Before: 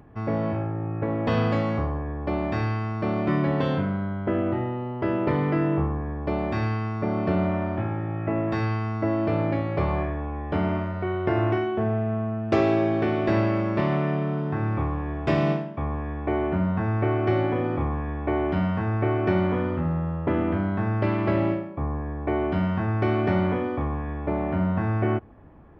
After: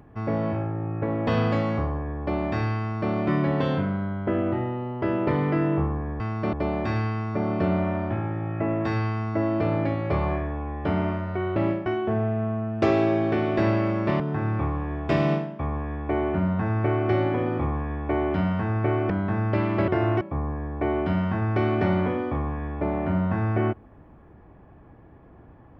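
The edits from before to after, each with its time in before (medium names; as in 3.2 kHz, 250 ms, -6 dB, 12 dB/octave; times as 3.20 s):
2.79–3.12 s: copy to 6.20 s
11.23–11.56 s: swap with 21.37–21.67 s
13.90–14.38 s: delete
19.28–20.59 s: delete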